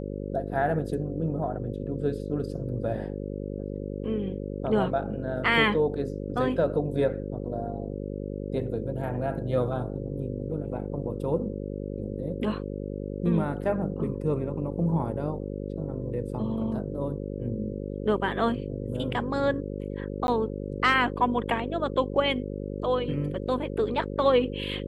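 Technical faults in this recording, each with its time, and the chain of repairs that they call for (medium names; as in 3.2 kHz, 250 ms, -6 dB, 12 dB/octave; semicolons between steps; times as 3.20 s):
buzz 50 Hz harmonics 11 -34 dBFS
20.27–20.28 s: dropout 11 ms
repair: de-hum 50 Hz, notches 11; interpolate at 20.27 s, 11 ms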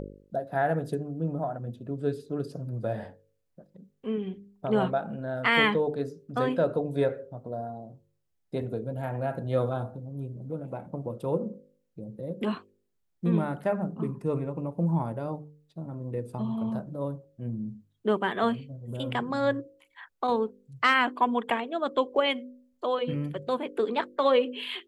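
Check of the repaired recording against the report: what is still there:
nothing left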